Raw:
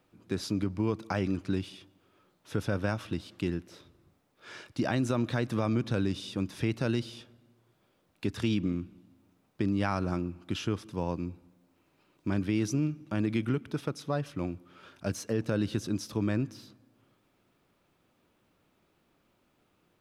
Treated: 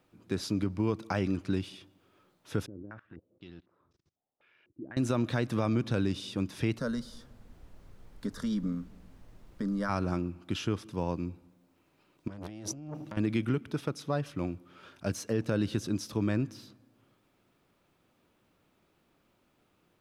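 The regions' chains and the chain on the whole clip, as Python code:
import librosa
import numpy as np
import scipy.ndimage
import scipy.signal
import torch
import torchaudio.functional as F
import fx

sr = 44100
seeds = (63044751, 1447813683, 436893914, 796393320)

y = fx.chain(x, sr, fx.law_mismatch(coded='A'),
    fx.level_steps(step_db=24),
    fx.filter_held_lowpass(hz=4.0, low_hz=340.0, high_hz=5600.0), at=(2.66, 4.97))
y = fx.fixed_phaser(y, sr, hz=520.0, stages=8, at=(6.78, 9.88), fade=0.02)
y = fx.dmg_noise_colour(y, sr, seeds[0], colour='brown', level_db=-51.0, at=(6.78, 9.88), fade=0.02)
y = fx.chain(y, sr, fx.peak_eq(hz=2400.0, db=-6.0, octaves=0.25),
    fx.over_compress(threshold_db=-39.0, ratio=-1.0),
    fx.transformer_sat(knee_hz=1200.0), at=(12.28, 13.17))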